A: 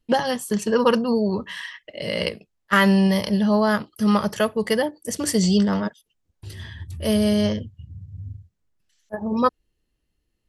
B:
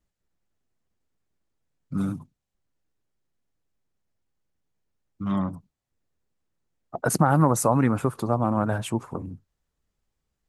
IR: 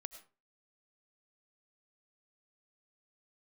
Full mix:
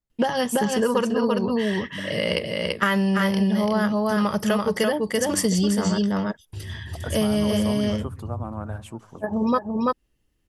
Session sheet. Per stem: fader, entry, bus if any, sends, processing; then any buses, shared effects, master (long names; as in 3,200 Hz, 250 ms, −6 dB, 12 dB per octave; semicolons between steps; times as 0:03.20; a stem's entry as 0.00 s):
+2.5 dB, 0.10 s, no send, echo send −3.5 dB, notch filter 4,200 Hz, Q 9.5
−10.0 dB, 0.00 s, no send, echo send −22 dB, no processing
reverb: not used
echo: single-tap delay 336 ms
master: downward compressor, threshold −18 dBFS, peak gain reduction 8.5 dB